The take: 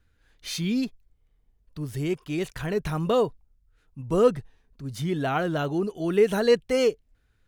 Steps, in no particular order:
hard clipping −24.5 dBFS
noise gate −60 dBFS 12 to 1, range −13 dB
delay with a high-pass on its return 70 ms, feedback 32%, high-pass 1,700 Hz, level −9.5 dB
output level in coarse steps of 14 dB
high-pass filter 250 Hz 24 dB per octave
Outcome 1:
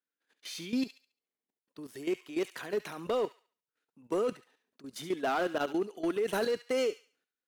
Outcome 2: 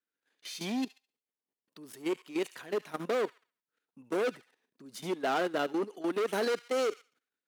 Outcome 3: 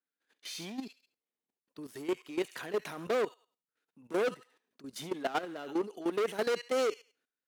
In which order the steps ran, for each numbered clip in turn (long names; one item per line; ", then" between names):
noise gate, then high-pass filter, then output level in coarse steps, then hard clipping, then delay with a high-pass on its return
hard clipping, then noise gate, then delay with a high-pass on its return, then output level in coarse steps, then high-pass filter
delay with a high-pass on its return, then noise gate, then hard clipping, then high-pass filter, then output level in coarse steps